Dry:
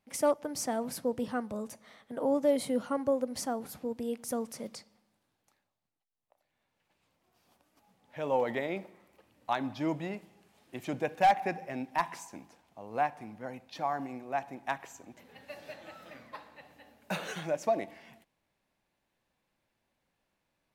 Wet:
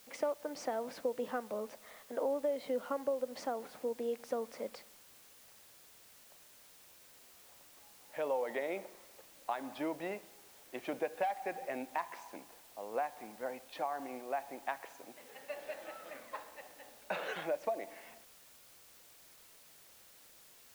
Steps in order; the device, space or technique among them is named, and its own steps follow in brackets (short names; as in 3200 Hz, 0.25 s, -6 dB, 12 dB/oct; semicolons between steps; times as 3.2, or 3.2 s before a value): baby monitor (BPF 370–3000 Hz; compressor, threshold -35 dBFS, peak gain reduction 15 dB; white noise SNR 17 dB); 14.98–15.54 HPF 84 Hz; bell 520 Hz +3.5 dB 0.62 oct; gain +1 dB